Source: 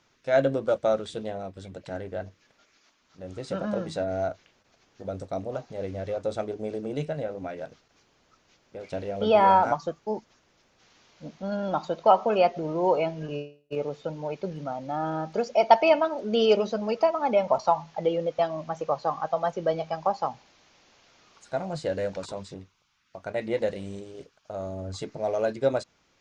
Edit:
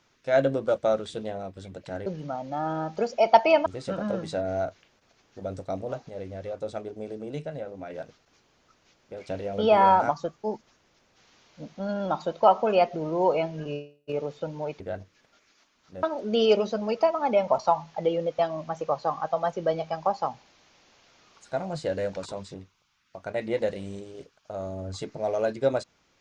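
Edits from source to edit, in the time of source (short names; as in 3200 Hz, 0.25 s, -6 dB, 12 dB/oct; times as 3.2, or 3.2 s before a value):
2.06–3.29 swap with 14.43–16.03
5.72–7.53 gain -4 dB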